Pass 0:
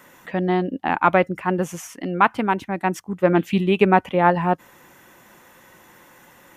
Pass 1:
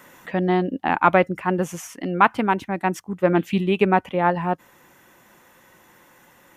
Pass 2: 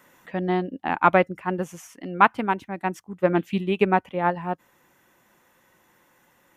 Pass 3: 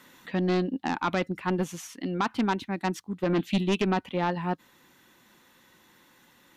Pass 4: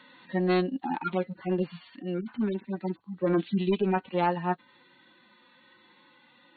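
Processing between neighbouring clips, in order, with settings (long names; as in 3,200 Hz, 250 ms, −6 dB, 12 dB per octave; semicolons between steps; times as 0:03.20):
speech leveller within 3 dB 2 s; level −1 dB
expander for the loud parts 1.5 to 1, over −27 dBFS
brickwall limiter −13.5 dBFS, peak gain reduction 11.5 dB; graphic EQ with 15 bands 250 Hz +5 dB, 630 Hz −5 dB, 4,000 Hz +11 dB; sine wavefolder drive 5 dB, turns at −11.5 dBFS; level −8 dB
harmonic-percussive split with one part muted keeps harmonic; linear-phase brick-wall low-pass 4,500 Hz; low-shelf EQ 200 Hz −10 dB; level +4 dB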